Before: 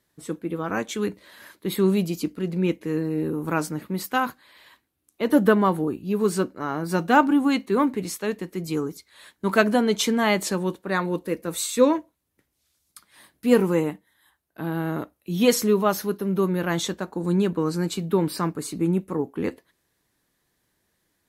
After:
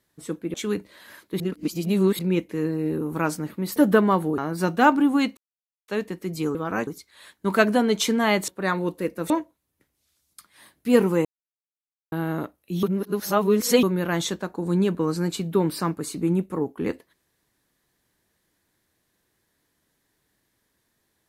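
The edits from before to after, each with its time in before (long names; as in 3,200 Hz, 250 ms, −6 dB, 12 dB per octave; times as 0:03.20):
0:00.54–0:00.86: move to 0:08.86
0:01.72–0:02.51: reverse
0:04.08–0:05.30: remove
0:05.92–0:06.69: remove
0:07.68–0:08.19: silence
0:10.47–0:10.75: remove
0:11.57–0:11.88: remove
0:13.83–0:14.70: silence
0:15.41–0:16.41: reverse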